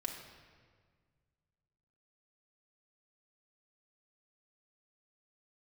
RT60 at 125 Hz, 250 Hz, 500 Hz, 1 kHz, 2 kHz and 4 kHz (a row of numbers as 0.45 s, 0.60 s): 2.6 s, 2.1 s, 1.8 s, 1.6 s, 1.5 s, 1.2 s